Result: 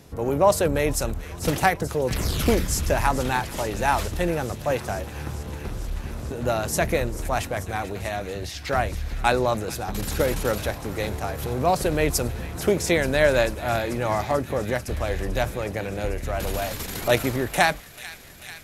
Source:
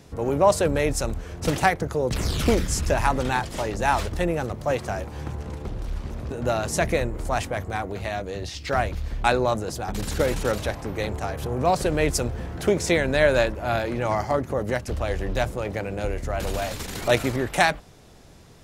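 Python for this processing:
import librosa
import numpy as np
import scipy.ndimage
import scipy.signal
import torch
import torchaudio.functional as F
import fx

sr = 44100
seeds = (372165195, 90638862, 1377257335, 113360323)

p1 = fx.peak_eq(x, sr, hz=12000.0, db=10.5, octaves=0.29)
y = p1 + fx.echo_wet_highpass(p1, sr, ms=440, feedback_pct=82, hz=1800.0, wet_db=-14, dry=0)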